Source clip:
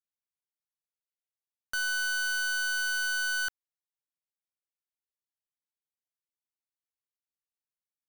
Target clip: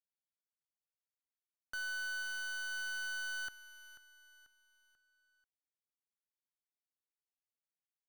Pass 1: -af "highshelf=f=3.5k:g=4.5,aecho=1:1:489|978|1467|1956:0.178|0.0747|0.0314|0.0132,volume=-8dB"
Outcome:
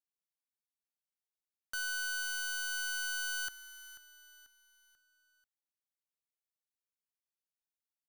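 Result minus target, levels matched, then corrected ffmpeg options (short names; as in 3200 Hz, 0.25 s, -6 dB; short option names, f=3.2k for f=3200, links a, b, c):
8000 Hz band +5.0 dB
-af "highshelf=f=3.5k:g=-6.5,aecho=1:1:489|978|1467|1956:0.178|0.0747|0.0314|0.0132,volume=-8dB"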